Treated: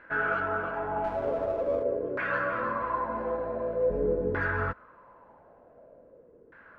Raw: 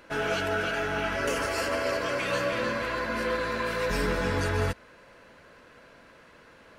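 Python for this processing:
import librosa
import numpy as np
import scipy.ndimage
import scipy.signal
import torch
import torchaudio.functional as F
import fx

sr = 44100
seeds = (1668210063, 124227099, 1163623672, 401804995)

y = fx.filter_lfo_lowpass(x, sr, shape='saw_down', hz=0.46, low_hz=400.0, high_hz=1700.0, q=4.0)
y = fx.running_max(y, sr, window=5, at=(1.04, 1.83))
y = F.gain(torch.from_numpy(y), -5.5).numpy()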